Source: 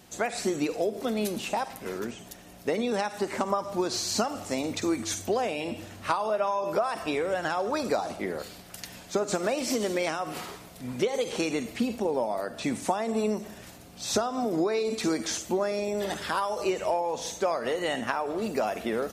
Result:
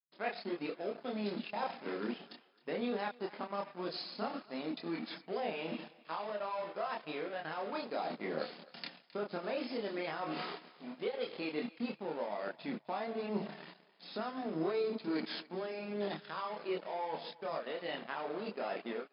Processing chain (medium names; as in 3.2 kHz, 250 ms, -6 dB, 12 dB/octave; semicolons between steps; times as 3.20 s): fade out at the end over 0.62 s; expander -44 dBFS; reverse; compression 8:1, threshold -36 dBFS, peak gain reduction 16 dB; reverse; transient shaper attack -1 dB, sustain -6 dB; gain riding within 5 dB 2 s; crossover distortion -48 dBFS; FFT band-pass 150–5200 Hz; chorus voices 4, 0.74 Hz, delay 27 ms, depth 2.4 ms; on a send: thinning echo 264 ms, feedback 40%, high-pass 540 Hz, level -19 dB; on the sum: trim +6 dB